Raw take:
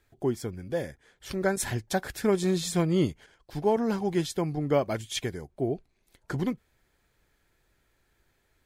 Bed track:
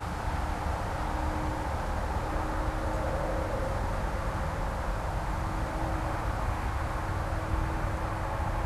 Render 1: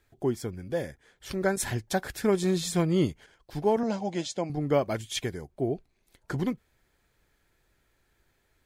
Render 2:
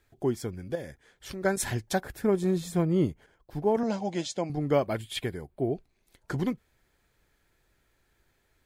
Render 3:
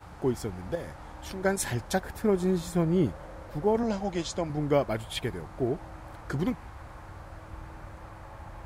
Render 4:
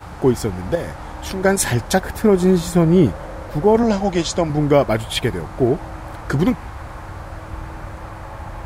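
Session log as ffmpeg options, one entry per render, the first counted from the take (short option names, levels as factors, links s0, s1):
-filter_complex "[0:a]asettb=1/sr,asplit=3[s0][s1][s2];[s0]atrim=end=3.834[s3];[s1]atrim=start=3.83:end=4.5,asetpts=PTS-STARTPTS,afade=t=in:d=0.004:c=qsin,afade=t=out:st=0.666:d=0.004:c=qsin,highpass=130,equalizer=f=150:t=q:w=4:g=-9,equalizer=f=390:t=q:w=4:g=-9,equalizer=f=600:t=q:w=4:g=9,equalizer=f=1200:t=q:w=4:g=-7,equalizer=f=1700:t=q:w=4:g=-5,equalizer=f=6800:t=q:w=4:g=4,lowpass=f=7600:w=0.5412,lowpass=f=7600:w=1.3066[s4];[s2]atrim=start=4.496[s5];[s3][s4]acrossfade=d=0.004:c1=hsin:c2=qsin[s6];[s6][s5]acrossfade=d=0.004:c1=qsin:c2=hsin"
-filter_complex "[0:a]asettb=1/sr,asplit=3[s0][s1][s2];[s0]atrim=end=0.754[s3];[s1]atrim=start=0.75:end=1.45,asetpts=PTS-STARTPTS,afade=t=in:d=0.004:c=qsin,afade=t=out:st=0.696:d=0.004:c=qsin,acompressor=threshold=0.0126:ratio=2:attack=3.2:release=140:knee=1:detection=peak[s4];[s2]atrim=start=1.446[s5];[s3][s4]acrossfade=d=0.004:c1=hsin:c2=qsin[s6];[s6][s5]acrossfade=d=0.004:c1=qsin:c2=hsin,asettb=1/sr,asplit=3[s7][s8][s9];[s7]atrim=end=2.004[s10];[s8]atrim=start=2:end=3.75,asetpts=PTS-STARTPTS,afade=t=in:d=0.004:c=qsin,afade=t=out:st=1.746:d=0.004:c=qsin,equalizer=f=4800:w=0.38:g=-10.5[s11];[s9]atrim=start=3.746[s12];[s10][s11]acrossfade=d=0.004:c1=hsin:c2=qsin[s13];[s13][s12]acrossfade=d=0.004:c1=qsin:c2=hsin,asettb=1/sr,asplit=3[s14][s15][s16];[s14]atrim=end=4.854[s17];[s15]atrim=start=4.85:end=5.72,asetpts=PTS-STARTPTS,afade=t=in:d=0.004:c=qsin,afade=t=out:st=0.866:d=0.004:c=qsin,equalizer=f=6100:t=o:w=0.46:g=-13.5[s18];[s16]atrim=start=5.716[s19];[s17][s18]acrossfade=d=0.004:c1=hsin:c2=qsin[s20];[s20][s19]acrossfade=d=0.004:c1=qsin:c2=hsin"
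-filter_complex "[1:a]volume=0.224[s0];[0:a][s0]amix=inputs=2:normalize=0"
-af "volume=3.98,alimiter=limit=0.708:level=0:latency=1"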